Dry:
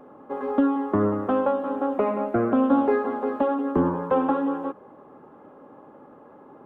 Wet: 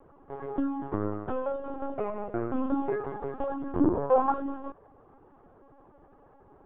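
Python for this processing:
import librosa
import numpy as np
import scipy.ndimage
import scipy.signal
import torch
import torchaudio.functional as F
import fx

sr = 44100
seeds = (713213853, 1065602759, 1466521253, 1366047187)

y = fx.peak_eq(x, sr, hz=fx.line((3.8, 260.0), (4.31, 1200.0)), db=11.5, octaves=1.5, at=(3.8, 4.31), fade=0.02)
y = fx.lpc_vocoder(y, sr, seeds[0], excitation='pitch_kept', order=16)
y = F.gain(torch.from_numpy(y), -8.5).numpy()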